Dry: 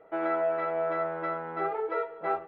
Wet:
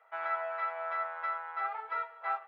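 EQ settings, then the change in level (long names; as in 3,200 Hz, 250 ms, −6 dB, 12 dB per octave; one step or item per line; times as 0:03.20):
high-pass filter 900 Hz 24 dB per octave
0.0 dB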